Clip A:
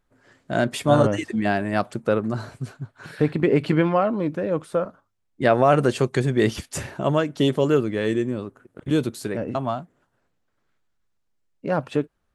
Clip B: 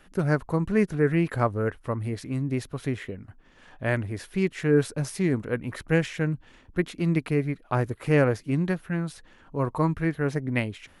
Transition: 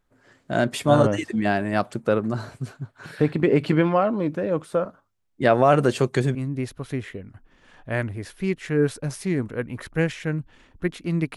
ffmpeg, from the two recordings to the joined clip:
-filter_complex "[0:a]apad=whole_dur=11.36,atrim=end=11.36,atrim=end=6.352[a];[1:a]atrim=start=2.288:end=7.3[b];[a][b]acrossfade=d=0.004:c1=hsin:c2=hsin"

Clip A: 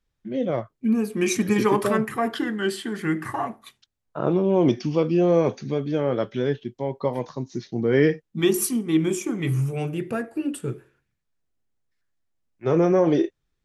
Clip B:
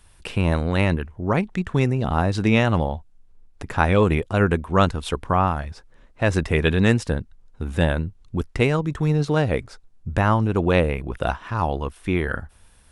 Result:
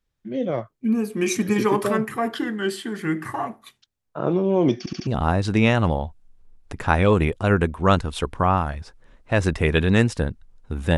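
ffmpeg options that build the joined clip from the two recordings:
-filter_complex "[0:a]apad=whole_dur=10.97,atrim=end=10.97,asplit=4[a][b][c][d];[a]atrim=end=4.862[e];[b]atrim=start=4.788:end=4.862[f];[c]atrim=start=4.788:end=4.862[g];[d]atrim=start=4.788:end=4.862[h];[1:a]atrim=start=1.968:end=7.87[i];[e][f]acrossfade=d=0.004:c1=hsin:c2=hsin[j];[j][g]acrossfade=d=0.004:c1=hsin:c2=hsin[k];[k][h]acrossfade=d=0.004:c1=hsin:c2=hsin[l];[l][i]acrossfade=d=0.004:c1=hsin:c2=hsin"

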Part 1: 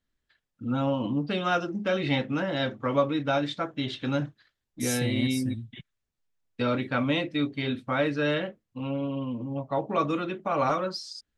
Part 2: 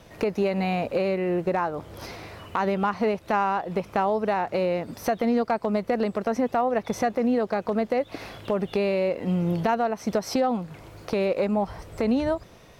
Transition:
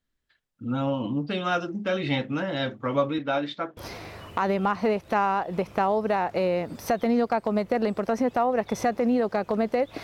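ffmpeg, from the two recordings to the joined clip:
-filter_complex "[0:a]asettb=1/sr,asplit=3[a][b][c];[a]atrim=end=3.184[d];[b]atrim=start=3.18:end=3.77,asetpts=PTS-STARTPTS,afade=t=in:d=0.004:c=qsin,afade=t=out:st=0.586:d=0.004:c=qsin,highpass=200,lowpass=4.4k[e];[c]atrim=start=3.766[f];[d][e]acrossfade=d=0.004:c1=hsin:c2=qsin[g];[g][f]acrossfade=d=0.004:c1=qsin:c2=hsin,apad=whole_dur=10.03,atrim=end=10.03,atrim=end=3.772[h];[1:a]atrim=start=1.948:end=8.21[i];[h][i]acrossfade=d=0.004:c1=hsin:c2=hsin"

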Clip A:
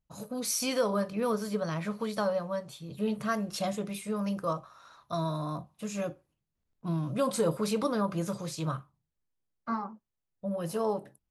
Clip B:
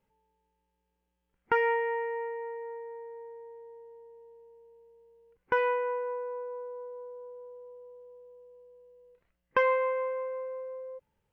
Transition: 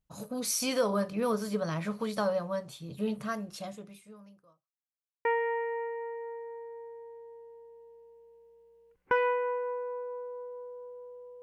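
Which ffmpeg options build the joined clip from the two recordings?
-filter_complex "[0:a]apad=whole_dur=11.42,atrim=end=11.42,asplit=2[a][b];[a]atrim=end=4.77,asetpts=PTS-STARTPTS,afade=t=out:st=2.92:d=1.85:c=qua[c];[b]atrim=start=4.77:end=5.25,asetpts=PTS-STARTPTS,volume=0[d];[1:a]atrim=start=1.66:end=7.83,asetpts=PTS-STARTPTS,afade=t=in:d=0.004:c=hsin[e];[c][d][e]concat=n=3:v=0:a=1"

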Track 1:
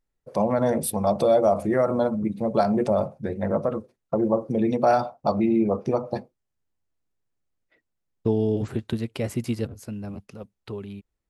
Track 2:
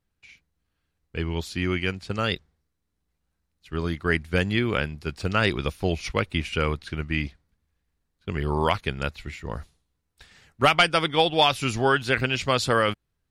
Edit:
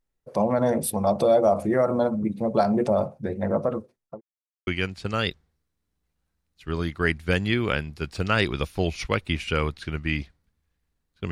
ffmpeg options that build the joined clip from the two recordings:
-filter_complex "[0:a]apad=whole_dur=11.31,atrim=end=11.31,asplit=2[a][b];[a]atrim=end=4.21,asetpts=PTS-STARTPTS,afade=t=out:st=3.7:d=0.51:c=qsin[c];[b]atrim=start=4.21:end=4.67,asetpts=PTS-STARTPTS,volume=0[d];[1:a]atrim=start=1.72:end=8.36,asetpts=PTS-STARTPTS,afade=t=in:d=0.004:c=hsin[e];[c][d][e]concat=n=3:v=0:a=1"

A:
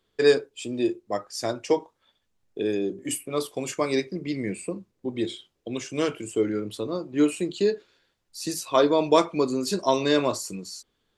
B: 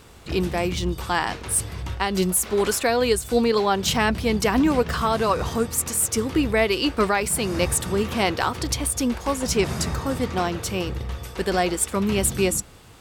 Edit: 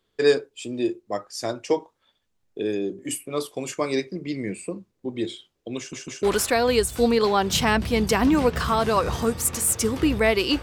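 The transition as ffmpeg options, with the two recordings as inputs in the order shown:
-filter_complex "[0:a]apad=whole_dur=10.62,atrim=end=10.62,asplit=3[a][b][c];[a]atrim=end=5.932[d];[b]atrim=start=5.778:end=5.932[e];[c]atrim=start=5.778:end=5.932[f];[1:a]atrim=start=2.558:end=6.95[g];[d][e]acrossfade=d=0.004:c1=hsin:c2=hsin[h];[h][f]acrossfade=d=0.004:c1=hsin:c2=hsin[i];[i][g]acrossfade=d=0.004:c1=hsin:c2=hsin"

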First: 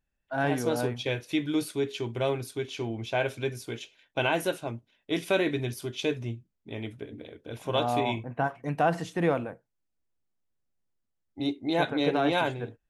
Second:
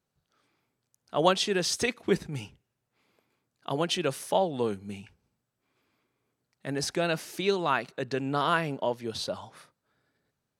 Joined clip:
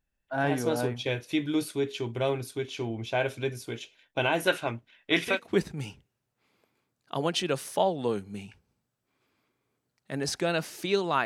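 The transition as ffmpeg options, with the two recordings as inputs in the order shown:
-filter_complex "[0:a]asettb=1/sr,asplit=3[a][b][c];[a]atrim=end=4.474[d];[b]atrim=start=4.47:end=5.4,asetpts=PTS-STARTPTS,afade=t=in:d=0.004:c=qsin,afade=t=out:st=0.926:d=0.004:c=qsin,equalizer=f=1.9k:w=0.61:g=12[e];[c]atrim=start=5.396[f];[d][e]acrossfade=d=0.004:c1=hsin:c2=qsin[g];[g][f]acrossfade=d=0.004:c1=qsin:c2=hsin,apad=whole_dur=11.25,atrim=end=11.25,atrim=end=5.4,asetpts=PTS-STARTPTS[h];[1:a]atrim=start=1.79:end=7.8,asetpts=PTS-STARTPTS[i];[h][i]acrossfade=d=0.16:c1=tri:c2=tri"

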